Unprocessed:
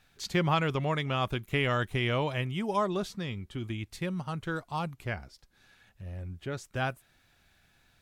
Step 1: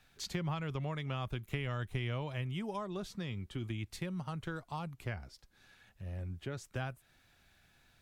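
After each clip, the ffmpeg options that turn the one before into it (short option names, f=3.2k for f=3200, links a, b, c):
-filter_complex "[0:a]acrossover=split=130[a][b];[b]acompressor=threshold=-37dB:ratio=4[c];[a][c]amix=inputs=2:normalize=0,volume=-1.5dB"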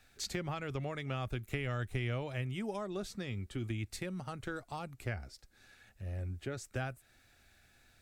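-af "equalizer=f=160:t=o:w=0.33:g=-10,equalizer=f=1k:t=o:w=0.33:g=-8,equalizer=f=3.15k:t=o:w=0.33:g=-5,equalizer=f=8k:t=o:w=0.33:g=4,volume=2.5dB"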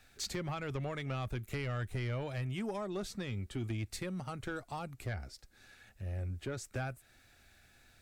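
-af "asoftclip=type=tanh:threshold=-31dB,volume=2dB"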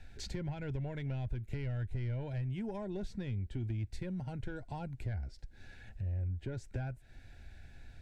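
-af "asuperstop=centerf=1200:order=8:qfactor=4.1,aemphasis=mode=reproduction:type=bsi,acompressor=threshold=-46dB:ratio=2,volume=3dB"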